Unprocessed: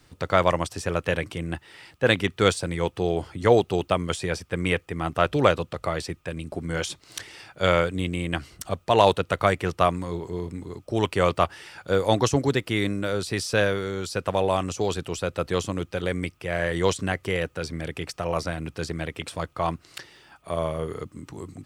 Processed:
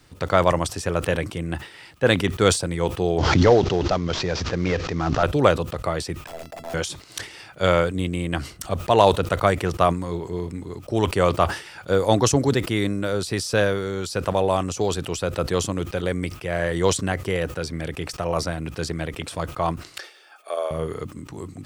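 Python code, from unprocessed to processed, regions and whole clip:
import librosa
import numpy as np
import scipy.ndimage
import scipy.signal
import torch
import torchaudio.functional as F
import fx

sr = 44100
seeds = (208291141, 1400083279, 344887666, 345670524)

y = fx.chain(x, sr, fx.cvsd(bps=32000),
    fx.pre_swell(db_per_s=25.0), at=(3.18, 5.23))
y = fx.chain(y, sr, fx.overflow_wrap(gain_db=27.0),
    fx.peak_eq(hz=650.0, db=12.0, octaves=1.1),
    fx.comb_fb(f0_hz=670.0, decay_s=0.16, harmonics='all', damping=0.0, mix_pct=80), at=(6.26, 6.74))
y = fx.chain(y, sr, fx.highpass(hz=440.0, slope=24),
    fx.notch_comb(f0_hz=990.0), at=(19.99, 20.71))
y = fx.dynamic_eq(y, sr, hz=2400.0, q=1.1, threshold_db=-39.0, ratio=4.0, max_db=-4)
y = fx.sustainer(y, sr, db_per_s=130.0)
y = F.gain(torch.from_numpy(y), 2.5).numpy()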